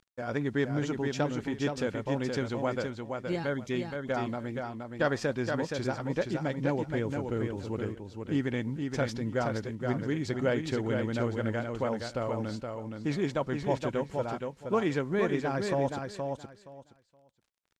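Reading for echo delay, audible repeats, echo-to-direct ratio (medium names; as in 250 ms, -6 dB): 471 ms, 3, -5.0 dB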